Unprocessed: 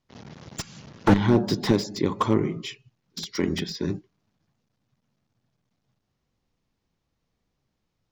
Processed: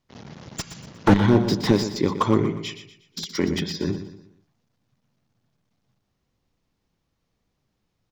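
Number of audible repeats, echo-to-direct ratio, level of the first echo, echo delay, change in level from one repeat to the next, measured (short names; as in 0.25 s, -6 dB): 3, -10.5 dB, -11.0 dB, 0.12 s, -8.0 dB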